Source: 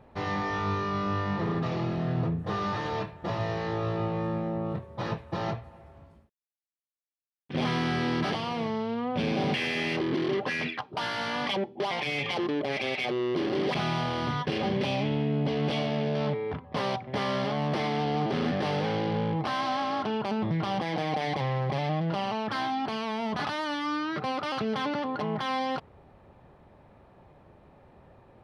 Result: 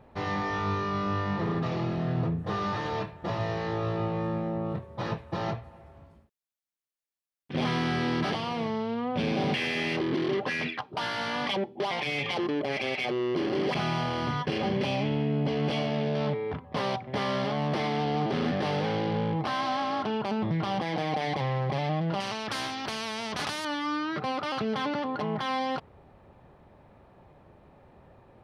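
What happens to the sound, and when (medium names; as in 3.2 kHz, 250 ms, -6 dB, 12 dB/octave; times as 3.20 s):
12.41–15.94 s: band-stop 3.7 kHz
22.20–23.65 s: spectrum-flattening compressor 2:1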